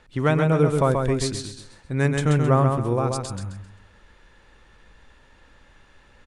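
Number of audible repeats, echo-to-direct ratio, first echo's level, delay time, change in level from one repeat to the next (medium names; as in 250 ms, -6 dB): 4, -4.0 dB, -4.5 dB, 132 ms, -10.0 dB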